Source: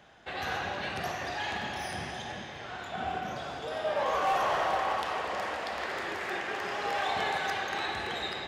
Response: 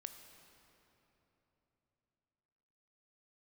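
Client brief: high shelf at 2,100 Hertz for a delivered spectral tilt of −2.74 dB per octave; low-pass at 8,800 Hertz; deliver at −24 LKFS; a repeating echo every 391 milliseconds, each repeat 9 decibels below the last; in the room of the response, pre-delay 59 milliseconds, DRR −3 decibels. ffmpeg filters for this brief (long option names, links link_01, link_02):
-filter_complex "[0:a]lowpass=8800,highshelf=frequency=2100:gain=4.5,aecho=1:1:391|782|1173|1564:0.355|0.124|0.0435|0.0152,asplit=2[link_01][link_02];[1:a]atrim=start_sample=2205,adelay=59[link_03];[link_02][link_03]afir=irnorm=-1:irlink=0,volume=7.5dB[link_04];[link_01][link_04]amix=inputs=2:normalize=0,volume=2dB"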